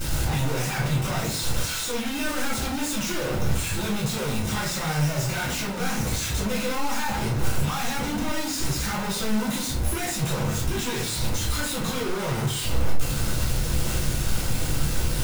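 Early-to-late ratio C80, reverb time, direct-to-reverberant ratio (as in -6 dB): 11.0 dB, 0.45 s, -6.0 dB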